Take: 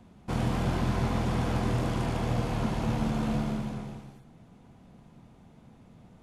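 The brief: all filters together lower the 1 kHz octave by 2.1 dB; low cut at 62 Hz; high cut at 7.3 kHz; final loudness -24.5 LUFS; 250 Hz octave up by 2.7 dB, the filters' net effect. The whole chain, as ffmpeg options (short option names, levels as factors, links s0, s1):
-af "highpass=62,lowpass=7300,equalizer=f=250:t=o:g=3.5,equalizer=f=1000:t=o:g=-3,volume=1.68"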